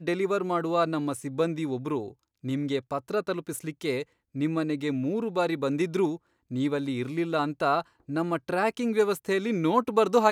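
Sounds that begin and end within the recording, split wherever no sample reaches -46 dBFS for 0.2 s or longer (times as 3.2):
2.44–4.03
4.35–6.17
6.51–7.82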